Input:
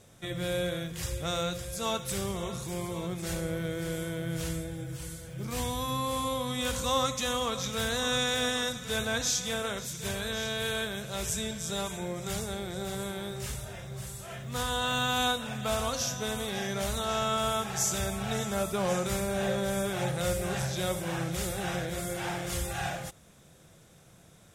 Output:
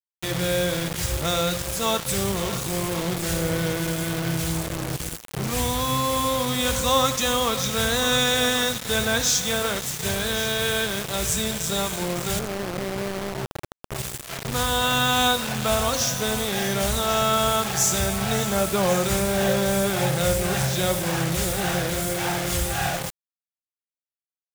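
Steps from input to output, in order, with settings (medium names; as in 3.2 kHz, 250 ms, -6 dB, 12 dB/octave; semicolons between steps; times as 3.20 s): 3.76–4.84 s: comb of notches 460 Hz; 12.39–13.92 s: Chebyshev band-pass 100–660 Hz, order 3; delay 97 ms -22 dB; bit crusher 6-bit; trim +7.5 dB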